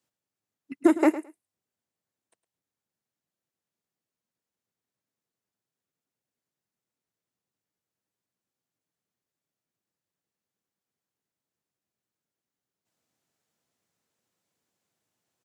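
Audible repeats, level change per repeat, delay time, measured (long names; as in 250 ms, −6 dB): 2, −16.5 dB, 108 ms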